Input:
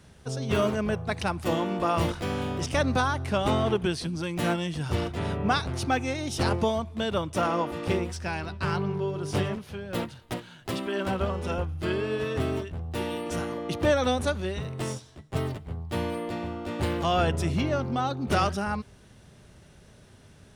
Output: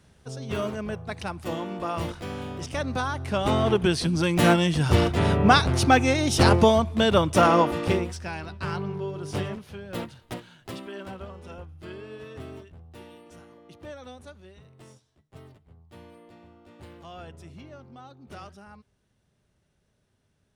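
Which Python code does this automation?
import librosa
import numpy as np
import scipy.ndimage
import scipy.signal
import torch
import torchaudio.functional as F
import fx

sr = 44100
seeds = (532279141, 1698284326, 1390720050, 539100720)

y = fx.gain(x, sr, db=fx.line((2.87, -4.5), (4.21, 8.0), (7.6, 8.0), (8.27, -2.5), (10.42, -2.5), (11.25, -12.0), (12.69, -12.0), (13.4, -18.5)))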